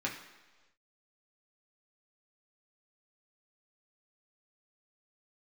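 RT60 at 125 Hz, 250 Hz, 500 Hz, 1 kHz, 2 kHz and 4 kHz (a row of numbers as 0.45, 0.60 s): 1.1, 1.1, 1.3, 1.2, 1.2, 1.3 s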